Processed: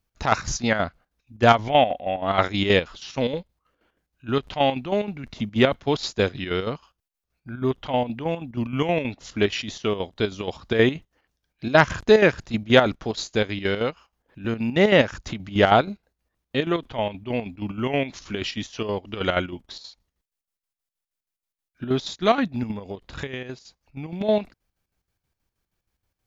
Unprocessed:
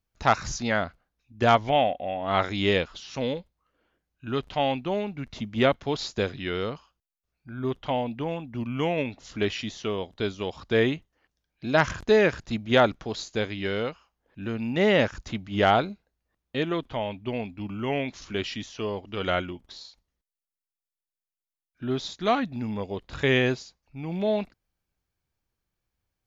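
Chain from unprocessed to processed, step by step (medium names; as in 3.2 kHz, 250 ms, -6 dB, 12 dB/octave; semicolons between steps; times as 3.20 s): square tremolo 6.3 Hz, depth 60%, duty 60%; 22.71–24.21 s: compression 12:1, threshold -35 dBFS, peak gain reduction 17 dB; trim +5.5 dB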